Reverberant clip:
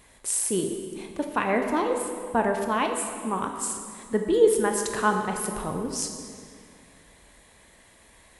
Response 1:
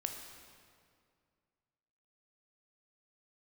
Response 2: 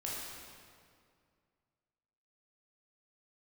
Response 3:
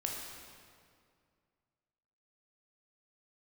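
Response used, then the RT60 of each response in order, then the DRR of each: 1; 2.2, 2.2, 2.2 s; 3.5, -6.0, -1.0 dB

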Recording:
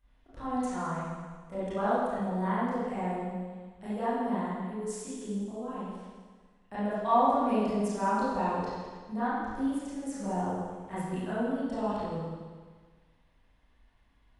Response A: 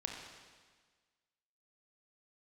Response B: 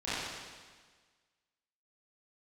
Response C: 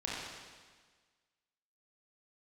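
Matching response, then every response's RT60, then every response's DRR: B; 1.5, 1.5, 1.5 s; 0.5, -14.0, -6.0 dB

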